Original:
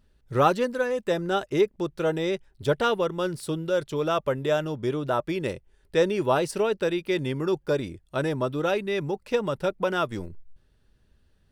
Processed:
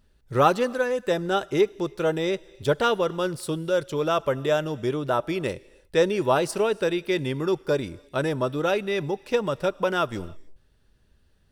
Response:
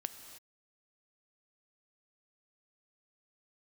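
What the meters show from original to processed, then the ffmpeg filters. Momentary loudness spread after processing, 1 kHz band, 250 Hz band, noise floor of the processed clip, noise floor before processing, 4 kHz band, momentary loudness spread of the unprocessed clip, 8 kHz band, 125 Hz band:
6 LU, +2.0 dB, +0.5 dB, -62 dBFS, -64 dBFS, +2.0 dB, 6 LU, +3.0 dB, +0.5 dB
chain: -filter_complex "[0:a]asplit=2[a][b];[b]bass=f=250:g=-13,treble=f=4k:g=5[c];[1:a]atrim=start_sample=2205[d];[c][d]afir=irnorm=-1:irlink=0,volume=-10.5dB[e];[a][e]amix=inputs=2:normalize=0"

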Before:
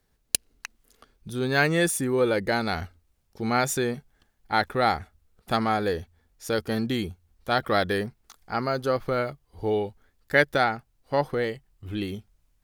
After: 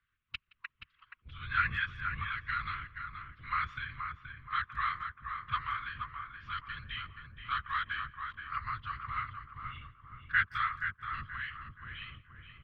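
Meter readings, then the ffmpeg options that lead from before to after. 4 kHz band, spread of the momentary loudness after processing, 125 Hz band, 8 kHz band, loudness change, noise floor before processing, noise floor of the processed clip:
-11.0 dB, 16 LU, -13.0 dB, under -40 dB, -10.0 dB, -70 dBFS, -79 dBFS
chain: -filter_complex "[0:a]afftfilt=real='re*(1-between(b*sr/4096,170,1200))':imag='im*(1-between(b*sr/4096,170,1200))':win_size=4096:overlap=0.75,asplit=2[a][b];[b]acompressor=threshold=-40dB:ratio=5,volume=-3dB[c];[a][c]amix=inputs=2:normalize=0,afftfilt=real='hypot(re,im)*cos(2*PI*random(0))':imag='hypot(re,im)*sin(2*PI*random(1))':win_size=512:overlap=0.75,asplit=2[d][e];[e]adelay=476,lowpass=f=1.5k:p=1,volume=-4dB,asplit=2[f][g];[g]adelay=476,lowpass=f=1.5k:p=1,volume=0.47,asplit=2[h][i];[i]adelay=476,lowpass=f=1.5k:p=1,volume=0.47,asplit=2[j][k];[k]adelay=476,lowpass=f=1.5k:p=1,volume=0.47,asplit=2[l][m];[m]adelay=476,lowpass=f=1.5k:p=1,volume=0.47,asplit=2[n][o];[o]adelay=476,lowpass=f=1.5k:p=1,volume=0.47[p];[f][h][j][l][n][p]amix=inputs=6:normalize=0[q];[d][q]amix=inputs=2:normalize=0,highpass=f=190:t=q:w=0.5412,highpass=f=190:t=q:w=1.307,lowpass=f=3.2k:t=q:w=0.5176,lowpass=f=3.2k:t=q:w=0.7071,lowpass=f=3.2k:t=q:w=1.932,afreqshift=-120,asplit=2[r][s];[s]adelay=170,highpass=300,lowpass=3.4k,asoftclip=type=hard:threshold=-25dB,volume=-22dB[t];[r][t]amix=inputs=2:normalize=0"

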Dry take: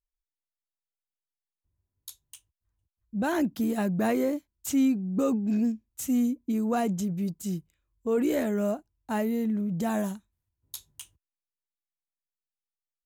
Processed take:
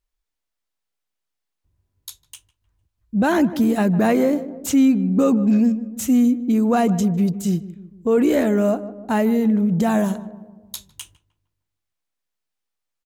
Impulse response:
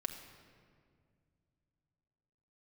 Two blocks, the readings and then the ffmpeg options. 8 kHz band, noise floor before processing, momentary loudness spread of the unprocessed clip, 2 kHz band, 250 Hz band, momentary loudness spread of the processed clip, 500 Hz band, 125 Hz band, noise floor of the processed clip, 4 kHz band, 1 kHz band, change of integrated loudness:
+7.0 dB, under -85 dBFS, 17 LU, +8.5 dB, +9.5 dB, 11 LU, +9.0 dB, +10.5 dB, -81 dBFS, +8.5 dB, +9.0 dB, +9.5 dB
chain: -filter_complex "[0:a]asplit=2[a][b];[b]adelay=153,lowpass=f=1.1k:p=1,volume=-15dB,asplit=2[c][d];[d]adelay=153,lowpass=f=1.1k:p=1,volume=0.54,asplit=2[e][f];[f]adelay=153,lowpass=f=1.1k:p=1,volume=0.54,asplit=2[g][h];[h]adelay=153,lowpass=f=1.1k:p=1,volume=0.54,asplit=2[i][j];[j]adelay=153,lowpass=f=1.1k:p=1,volume=0.54[k];[a][c][e][g][i][k]amix=inputs=6:normalize=0,asplit=2[l][m];[m]alimiter=limit=-23dB:level=0:latency=1:release=88,volume=0.5dB[n];[l][n]amix=inputs=2:normalize=0,highshelf=f=7.2k:g=-6.5,volume=4.5dB"

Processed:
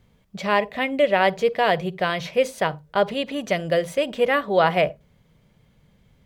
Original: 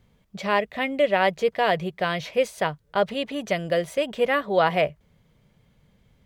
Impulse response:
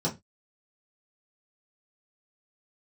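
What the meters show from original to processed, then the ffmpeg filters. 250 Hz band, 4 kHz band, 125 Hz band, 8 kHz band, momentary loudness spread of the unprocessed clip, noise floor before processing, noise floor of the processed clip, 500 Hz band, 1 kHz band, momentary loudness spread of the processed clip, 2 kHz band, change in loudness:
+2.0 dB, +2.0 dB, +2.0 dB, +2.0 dB, 7 LU, -63 dBFS, -60 dBFS, +2.0 dB, +2.0 dB, 7 LU, +2.0 dB, +2.0 dB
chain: -filter_complex "[0:a]asplit=2[a][b];[1:a]atrim=start_sample=2205,adelay=45[c];[b][c]afir=irnorm=-1:irlink=0,volume=-29dB[d];[a][d]amix=inputs=2:normalize=0,volume=2dB"

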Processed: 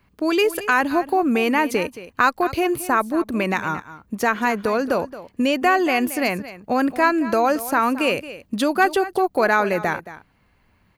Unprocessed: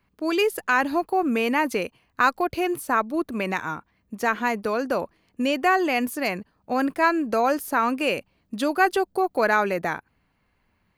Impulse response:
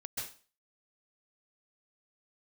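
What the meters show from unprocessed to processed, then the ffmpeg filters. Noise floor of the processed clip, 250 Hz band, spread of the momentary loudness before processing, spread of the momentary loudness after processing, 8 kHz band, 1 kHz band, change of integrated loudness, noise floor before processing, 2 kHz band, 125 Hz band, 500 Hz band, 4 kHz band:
-61 dBFS, +4.0 dB, 9 LU, 7 LU, +4.5 dB, +3.0 dB, +3.0 dB, -69 dBFS, +3.0 dB, +5.5 dB, +3.5 dB, +3.5 dB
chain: -filter_complex "[0:a]equalizer=f=76:t=o:w=1.9:g=3,asplit=2[a][b];[b]acompressor=threshold=-28dB:ratio=6,volume=1.5dB[c];[a][c]amix=inputs=2:normalize=0,aecho=1:1:223:0.178"

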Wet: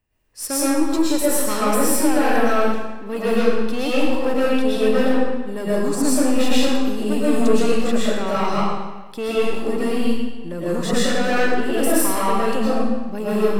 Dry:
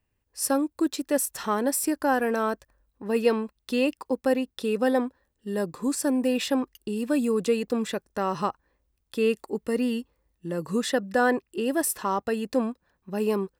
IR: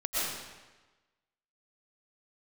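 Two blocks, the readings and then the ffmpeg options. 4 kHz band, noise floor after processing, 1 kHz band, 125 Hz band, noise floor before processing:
+9.0 dB, -31 dBFS, +6.5 dB, +8.5 dB, -77 dBFS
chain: -filter_complex "[0:a]aeval=exprs='(tanh(12.6*val(0)+0.2)-tanh(0.2))/12.6':c=same[a];[1:a]atrim=start_sample=2205[b];[a][b]afir=irnorm=-1:irlink=0,volume=2dB"

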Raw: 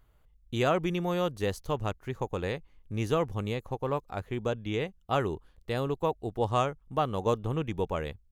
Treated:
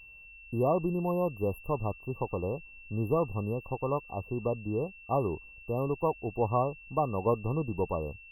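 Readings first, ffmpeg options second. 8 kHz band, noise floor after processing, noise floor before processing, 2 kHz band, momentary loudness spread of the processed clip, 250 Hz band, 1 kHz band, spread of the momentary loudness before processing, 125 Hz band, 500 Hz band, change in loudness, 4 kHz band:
under -15 dB, -52 dBFS, -64 dBFS, -5.0 dB, 7 LU, 0.0 dB, -1.0 dB, 7 LU, 0.0 dB, 0.0 dB, -0.5 dB, under -35 dB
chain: -af "afftfilt=real='re*(1-between(b*sr/4096,1200,11000))':imag='im*(1-between(b*sr/4096,1200,11000))':win_size=4096:overlap=0.75,aeval=exprs='val(0)+0.00355*sin(2*PI*2700*n/s)':c=same"

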